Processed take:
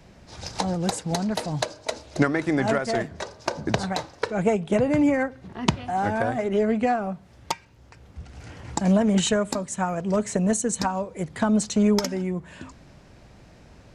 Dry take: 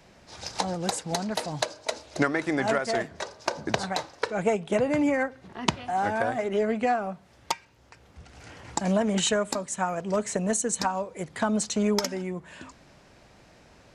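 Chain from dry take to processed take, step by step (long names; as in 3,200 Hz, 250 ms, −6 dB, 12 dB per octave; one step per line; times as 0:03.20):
low-shelf EQ 260 Hz +10 dB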